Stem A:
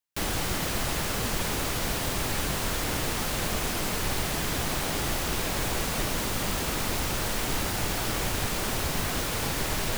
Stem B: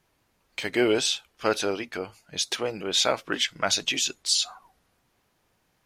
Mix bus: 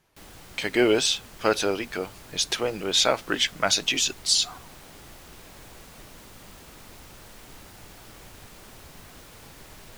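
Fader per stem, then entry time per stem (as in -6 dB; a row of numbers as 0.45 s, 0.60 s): -18.0 dB, +2.0 dB; 0.00 s, 0.00 s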